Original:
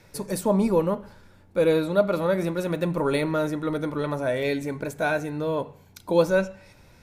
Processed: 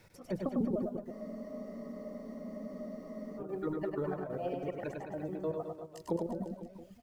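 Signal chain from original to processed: pitch shift switched off and on +4 st, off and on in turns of 151 ms; reverb removal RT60 1.3 s; low-pass that closes with the level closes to 380 Hz, closed at -22 dBFS; bit crusher 11-bit; trance gate "x..xxx.x.x" 185 bpm -12 dB; reverse bouncing-ball echo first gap 100 ms, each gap 1.15×, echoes 5; spectral freeze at 1.13 s, 2.25 s; trim -6.5 dB

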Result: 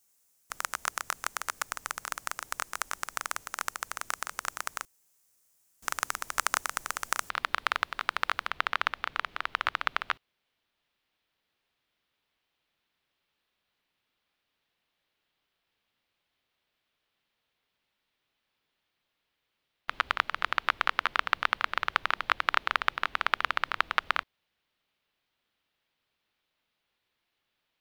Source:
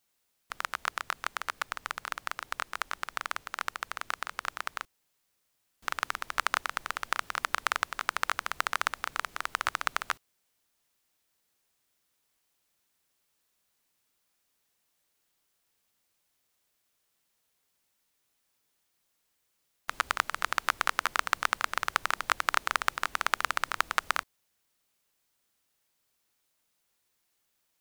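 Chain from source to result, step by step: resonant high shelf 5.1 kHz +7.5 dB, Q 1.5, from 7.30 s -8 dB, from 8.48 s -14 dB

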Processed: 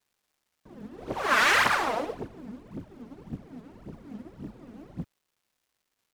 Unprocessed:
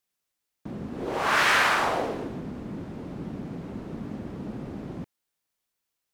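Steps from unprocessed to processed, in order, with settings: phaser 1.8 Hz, delay 4.8 ms, feedback 70%; crackle 550 per s -49 dBFS; upward expansion 1.5:1, over -40 dBFS; trim -3 dB

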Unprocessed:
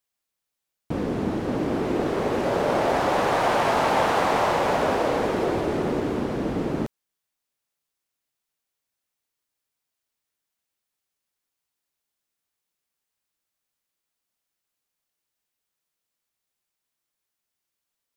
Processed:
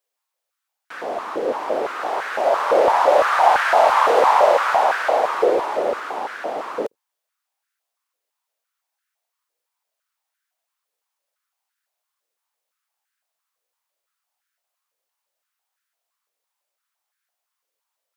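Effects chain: octave divider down 2 oct, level -4 dB; step-sequenced high-pass 5.9 Hz 490–1500 Hz; trim +1 dB

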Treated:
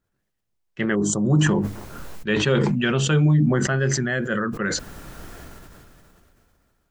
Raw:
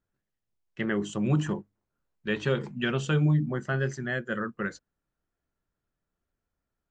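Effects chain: 0.95–1.41 s: Butterworth band-stop 2.4 kHz, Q 0.56; decay stretcher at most 21 dB/s; trim +5.5 dB

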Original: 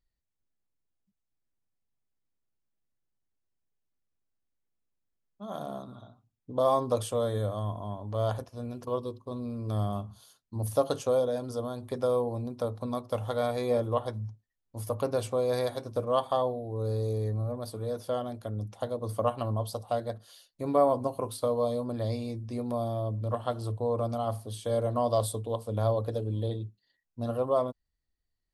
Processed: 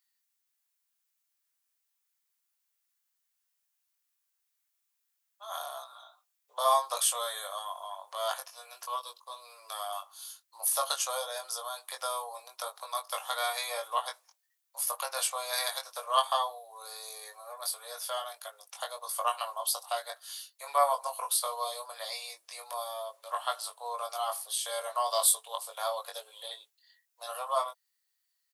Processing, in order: Bessel high-pass 1.3 kHz, order 8; treble shelf 7.8 kHz +9.5 dB; doubling 21 ms -4.5 dB; trim +7.5 dB

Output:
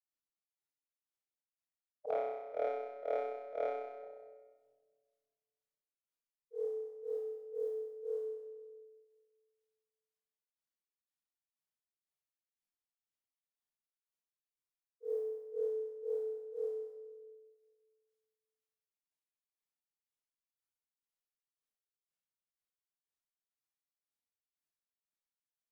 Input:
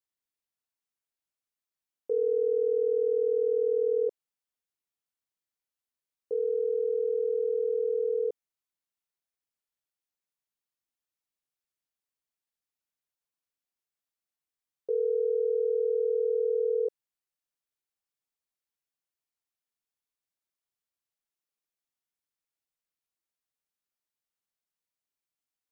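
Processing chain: gate -22 dBFS, range -22 dB; formant shift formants +6 st; granulator 255 ms, grains 2 per s, pitch spread up and down by 0 st; flutter echo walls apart 5.5 m, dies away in 1.1 s; simulated room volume 2300 m³, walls mixed, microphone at 0.62 m; trim +14 dB

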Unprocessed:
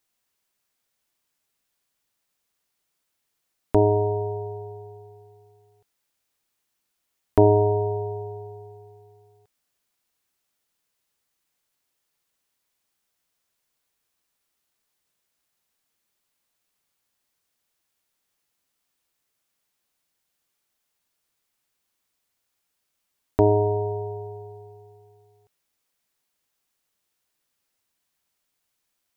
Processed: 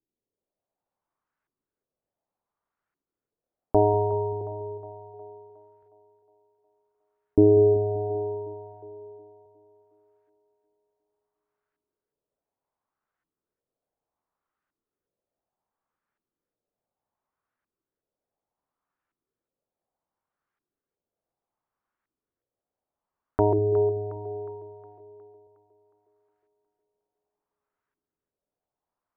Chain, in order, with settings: LFO low-pass saw up 0.68 Hz 320–1600 Hz; two-band feedback delay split 370 Hz, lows 193 ms, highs 362 ms, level -12.5 dB; trim -4.5 dB

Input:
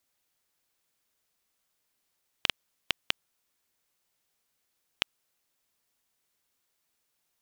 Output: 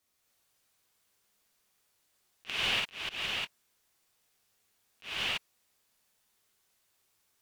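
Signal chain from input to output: rotating-head pitch shifter -1 st; gated-style reverb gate 360 ms flat, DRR -7 dB; slow attack 205 ms; trim -2 dB

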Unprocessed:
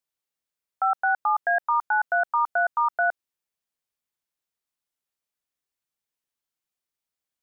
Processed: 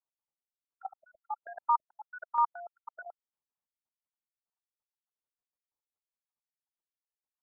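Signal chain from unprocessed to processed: random holes in the spectrogram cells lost 47%; low-pass 1.4 kHz 24 dB/octave; peaking EQ 890 Hz +5.5 dB 0.58 oct; level held to a coarse grid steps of 20 dB; square tremolo 2.1 Hz, depth 60%, duty 70%; 0.83–1.42 s: static phaser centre 430 Hz, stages 6; trim -3 dB

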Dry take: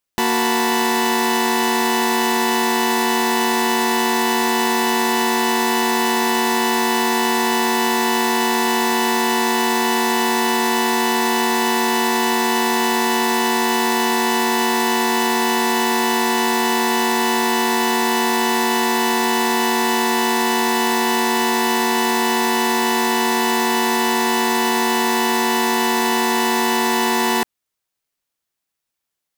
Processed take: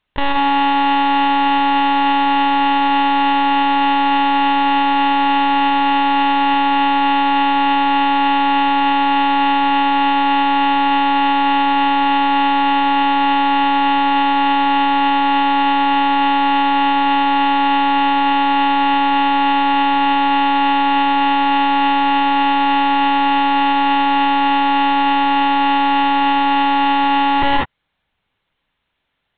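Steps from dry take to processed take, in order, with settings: monotone LPC vocoder at 8 kHz 280 Hz; gated-style reverb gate 220 ms rising, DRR 1 dB; compressor with a negative ratio -20 dBFS, ratio -0.5; loudness maximiser +12.5 dB; trim -4 dB

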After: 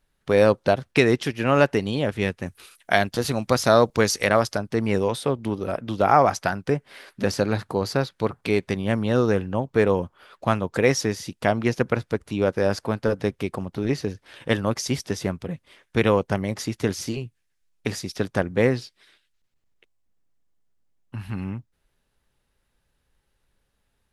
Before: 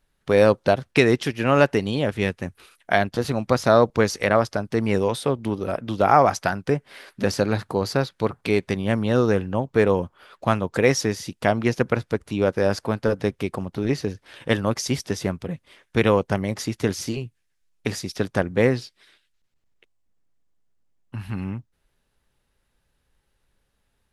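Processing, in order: 2.46–4.58 s: treble shelf 3.4 kHz +9 dB; trim -1 dB

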